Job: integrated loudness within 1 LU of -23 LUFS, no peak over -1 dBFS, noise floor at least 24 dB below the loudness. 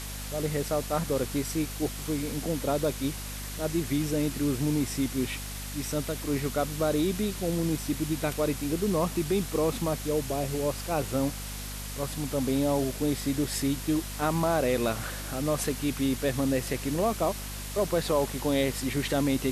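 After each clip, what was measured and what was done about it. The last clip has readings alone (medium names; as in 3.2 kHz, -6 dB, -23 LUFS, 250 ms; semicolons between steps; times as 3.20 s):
hum 50 Hz; highest harmonic 250 Hz; hum level -37 dBFS; noise floor -37 dBFS; noise floor target -53 dBFS; loudness -29.0 LUFS; peak level -13.5 dBFS; loudness target -23.0 LUFS
-> de-hum 50 Hz, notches 5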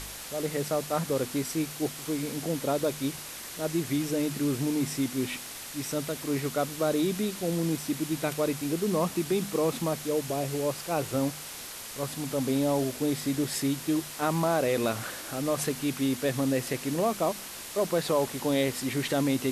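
hum not found; noise floor -41 dBFS; noise floor target -54 dBFS
-> noise print and reduce 13 dB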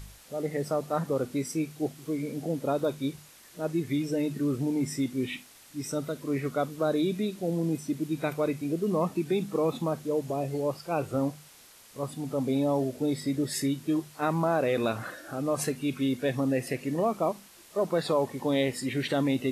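noise floor -54 dBFS; loudness -30.0 LUFS; peak level -13.5 dBFS; loudness target -23.0 LUFS
-> trim +7 dB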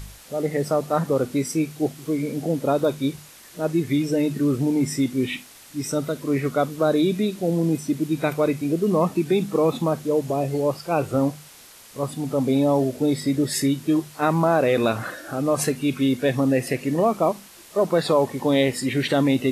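loudness -23.0 LUFS; peak level -6.5 dBFS; noise floor -47 dBFS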